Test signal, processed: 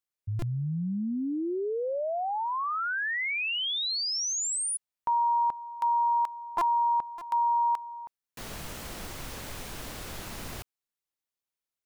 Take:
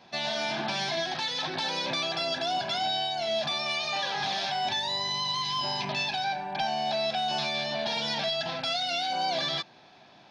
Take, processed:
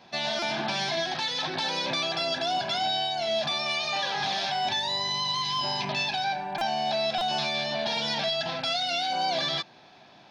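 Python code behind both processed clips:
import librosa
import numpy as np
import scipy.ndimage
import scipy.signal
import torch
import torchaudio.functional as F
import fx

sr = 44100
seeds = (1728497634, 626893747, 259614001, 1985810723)

y = fx.buffer_glitch(x, sr, at_s=(0.39, 6.58, 7.18), block=128, repeats=10)
y = F.gain(torch.from_numpy(y), 1.5).numpy()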